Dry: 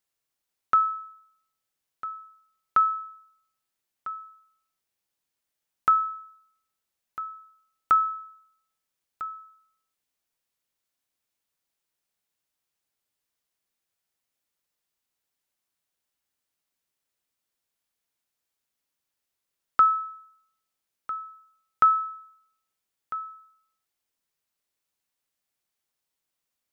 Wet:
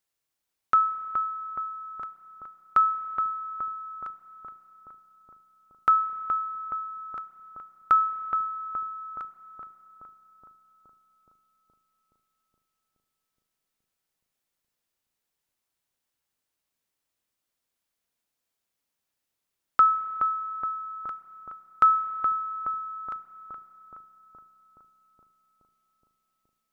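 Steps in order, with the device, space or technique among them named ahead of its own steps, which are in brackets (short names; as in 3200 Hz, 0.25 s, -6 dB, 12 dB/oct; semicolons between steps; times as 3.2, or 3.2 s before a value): dub delay into a spring reverb (darkening echo 0.421 s, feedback 75%, low-pass 1100 Hz, level -5 dB; spring tank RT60 3.7 s, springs 31 ms, chirp 50 ms, DRR 13.5 dB)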